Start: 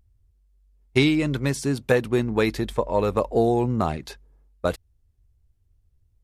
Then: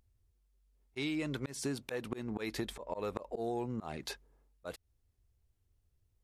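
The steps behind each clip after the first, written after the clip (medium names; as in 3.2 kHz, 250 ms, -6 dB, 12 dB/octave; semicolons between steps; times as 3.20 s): bass shelf 170 Hz -11 dB; slow attack 271 ms; compression 12:1, threshold -31 dBFS, peak gain reduction 10.5 dB; trim -1.5 dB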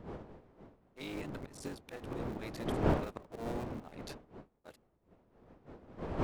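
cycle switcher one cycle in 3, muted; wind noise 470 Hz -38 dBFS; upward expansion 1.5:1, over -52 dBFS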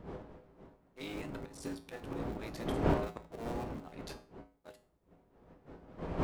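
feedback comb 56 Hz, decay 0.38 s, harmonics odd, mix 70%; trim +7.5 dB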